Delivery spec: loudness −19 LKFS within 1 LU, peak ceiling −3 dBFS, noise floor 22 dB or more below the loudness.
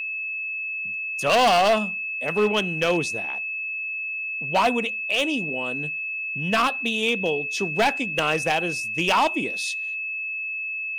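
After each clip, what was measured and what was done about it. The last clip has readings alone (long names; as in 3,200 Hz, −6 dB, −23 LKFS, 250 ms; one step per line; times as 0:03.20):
share of clipped samples 1.3%; peaks flattened at −14.5 dBFS; interfering tone 2,600 Hz; level of the tone −27 dBFS; integrated loudness −23.5 LKFS; sample peak −14.5 dBFS; target loudness −19.0 LKFS
→ clipped peaks rebuilt −14.5 dBFS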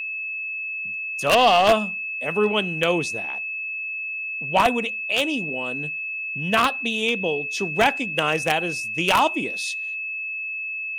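share of clipped samples 0.0%; interfering tone 2,600 Hz; level of the tone −27 dBFS
→ notch filter 2,600 Hz, Q 30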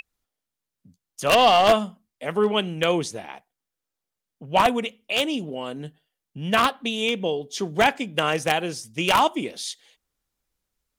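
interfering tone none found; integrated loudness −22.5 LKFS; sample peak −4.5 dBFS; target loudness −19.0 LKFS
→ level +3.5 dB
brickwall limiter −3 dBFS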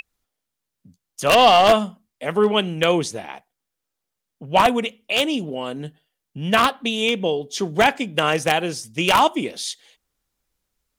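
integrated loudness −19.5 LKFS; sample peak −3.0 dBFS; background noise floor −82 dBFS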